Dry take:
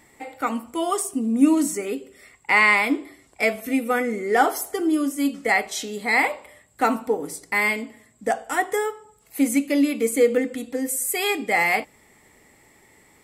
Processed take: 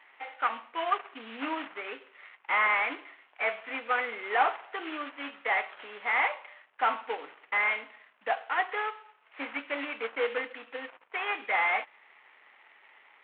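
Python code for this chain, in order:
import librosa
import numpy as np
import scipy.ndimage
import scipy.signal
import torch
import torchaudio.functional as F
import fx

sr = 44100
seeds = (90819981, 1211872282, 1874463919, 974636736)

y = fx.cvsd(x, sr, bps=16000)
y = scipy.signal.sosfilt(scipy.signal.cheby1(2, 1.0, 1000.0, 'highpass', fs=sr, output='sos'), y)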